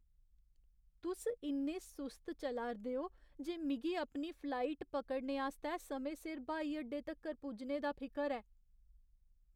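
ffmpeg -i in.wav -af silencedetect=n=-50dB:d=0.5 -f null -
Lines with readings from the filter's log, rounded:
silence_start: 0.00
silence_end: 1.03 | silence_duration: 1.03
silence_start: 8.40
silence_end: 9.55 | silence_duration: 1.15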